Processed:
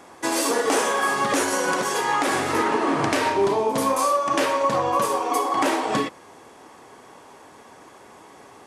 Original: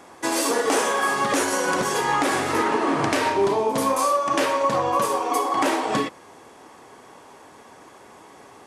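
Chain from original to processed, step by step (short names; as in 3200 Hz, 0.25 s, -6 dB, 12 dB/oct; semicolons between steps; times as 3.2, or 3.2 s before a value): 1.74–2.28 HPF 270 Hz 6 dB/oct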